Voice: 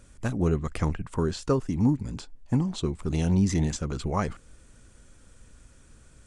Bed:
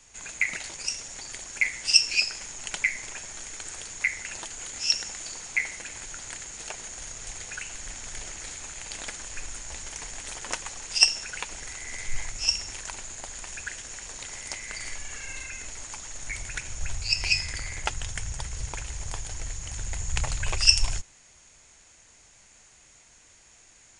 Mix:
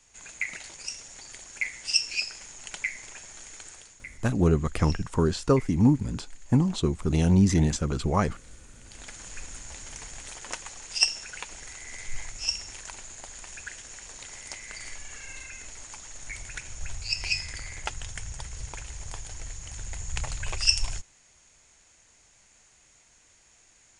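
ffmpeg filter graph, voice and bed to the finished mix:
-filter_complex "[0:a]adelay=4000,volume=3dB[a];[1:a]volume=8dB,afade=t=out:st=3.6:d=0.41:silence=0.251189,afade=t=in:st=8.82:d=0.44:silence=0.211349[b];[a][b]amix=inputs=2:normalize=0"

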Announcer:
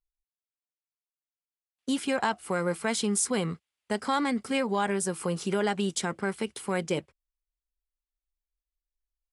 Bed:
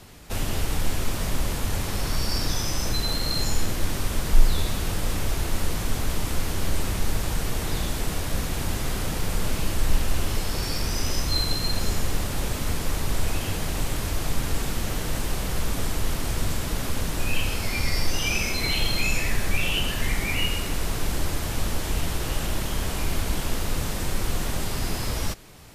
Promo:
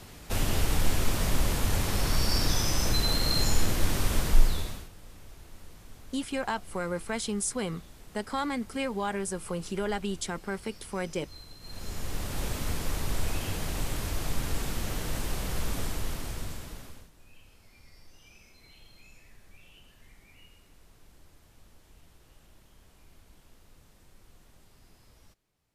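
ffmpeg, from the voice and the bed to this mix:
-filter_complex "[0:a]adelay=4250,volume=-4dB[a];[1:a]volume=18dB,afade=t=out:st=4.17:d=0.72:silence=0.0707946,afade=t=in:st=11.6:d=0.84:silence=0.11885,afade=t=out:st=15.74:d=1.36:silence=0.0501187[b];[a][b]amix=inputs=2:normalize=0"

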